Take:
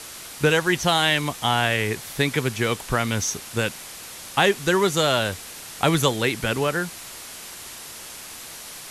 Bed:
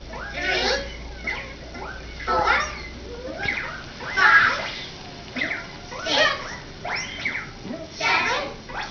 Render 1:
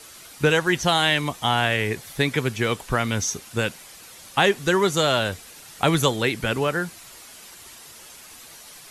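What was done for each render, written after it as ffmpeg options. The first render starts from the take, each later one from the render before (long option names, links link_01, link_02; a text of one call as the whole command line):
ffmpeg -i in.wav -af "afftdn=noise_reduction=8:noise_floor=-39" out.wav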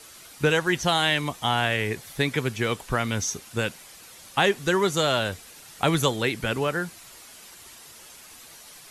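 ffmpeg -i in.wav -af "volume=-2.5dB" out.wav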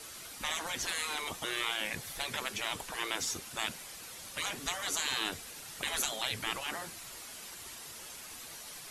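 ffmpeg -i in.wav -af "afftfilt=real='re*lt(hypot(re,im),0.0891)':imag='im*lt(hypot(re,im),0.0891)':win_size=1024:overlap=0.75" out.wav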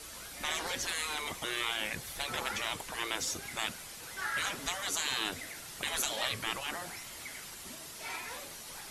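ffmpeg -i in.wav -i bed.wav -filter_complex "[1:a]volume=-21dB[link_01];[0:a][link_01]amix=inputs=2:normalize=0" out.wav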